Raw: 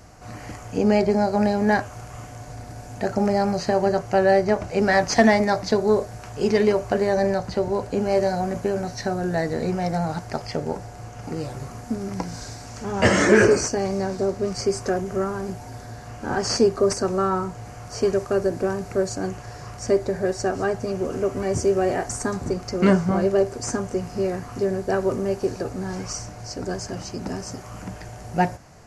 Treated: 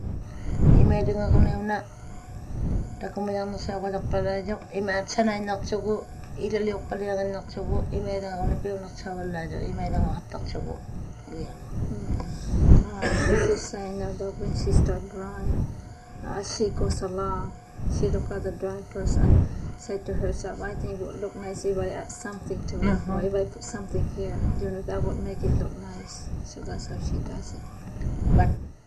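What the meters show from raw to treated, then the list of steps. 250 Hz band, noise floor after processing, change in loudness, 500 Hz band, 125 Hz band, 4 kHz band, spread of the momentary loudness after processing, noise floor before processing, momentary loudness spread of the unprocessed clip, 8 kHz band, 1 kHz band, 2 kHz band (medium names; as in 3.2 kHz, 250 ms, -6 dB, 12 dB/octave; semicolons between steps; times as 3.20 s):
-5.5 dB, -42 dBFS, -5.0 dB, -8.0 dB, +4.5 dB, -8.0 dB, 14 LU, -39 dBFS, 17 LU, -8.5 dB, -8.0 dB, -8.5 dB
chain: drifting ripple filter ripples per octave 1.8, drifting +1.3 Hz, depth 12 dB; wind noise 120 Hz -17 dBFS; trim -10 dB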